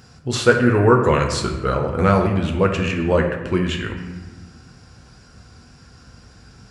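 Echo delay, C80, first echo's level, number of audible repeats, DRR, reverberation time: no echo, 8.0 dB, no echo, no echo, 2.0 dB, 1.2 s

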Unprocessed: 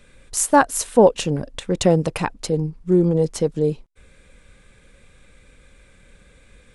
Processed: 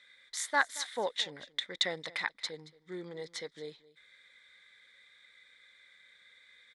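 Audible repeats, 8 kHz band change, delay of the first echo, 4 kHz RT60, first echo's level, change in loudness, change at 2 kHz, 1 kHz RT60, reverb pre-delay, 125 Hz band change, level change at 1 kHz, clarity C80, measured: 1, -16.0 dB, 226 ms, no reverb, -20.0 dB, -15.5 dB, -4.5 dB, no reverb, no reverb, -32.0 dB, -15.5 dB, no reverb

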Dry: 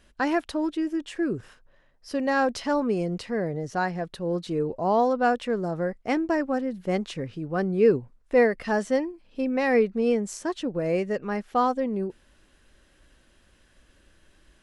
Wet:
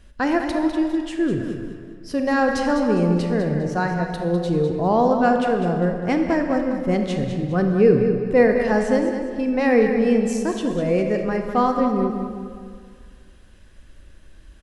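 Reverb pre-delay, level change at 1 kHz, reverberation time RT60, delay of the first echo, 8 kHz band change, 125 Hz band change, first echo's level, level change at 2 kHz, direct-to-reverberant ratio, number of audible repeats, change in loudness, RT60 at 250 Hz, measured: 28 ms, +4.0 dB, 2.0 s, 202 ms, no reading, +9.5 dB, -9.0 dB, +4.0 dB, 3.0 dB, 3, +5.5 dB, 2.0 s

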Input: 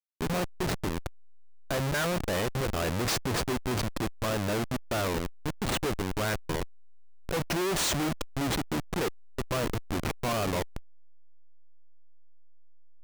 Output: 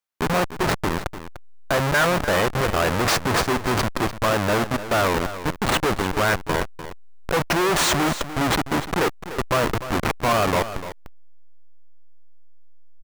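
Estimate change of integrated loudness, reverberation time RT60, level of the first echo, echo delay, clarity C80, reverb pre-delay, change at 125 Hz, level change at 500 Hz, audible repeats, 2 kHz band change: +9.0 dB, no reverb, -12.5 dB, 297 ms, no reverb, no reverb, +6.0 dB, +9.0 dB, 1, +11.5 dB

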